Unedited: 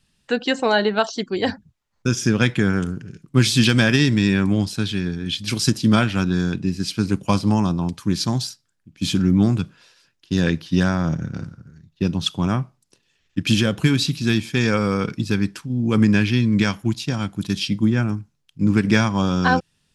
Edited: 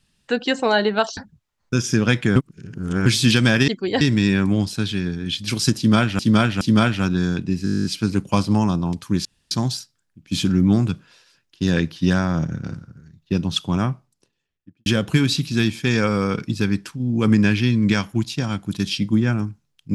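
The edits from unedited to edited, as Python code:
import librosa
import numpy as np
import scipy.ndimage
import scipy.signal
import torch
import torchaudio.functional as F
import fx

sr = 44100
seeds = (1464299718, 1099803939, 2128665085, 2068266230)

y = fx.studio_fade_out(x, sr, start_s=12.54, length_s=1.02)
y = fx.edit(y, sr, fx.move(start_s=1.17, length_s=0.33, to_s=4.01),
    fx.reverse_span(start_s=2.69, length_s=0.7),
    fx.repeat(start_s=5.77, length_s=0.42, count=3),
    fx.stutter(start_s=6.81, slice_s=0.02, count=11),
    fx.insert_room_tone(at_s=8.21, length_s=0.26), tone=tone)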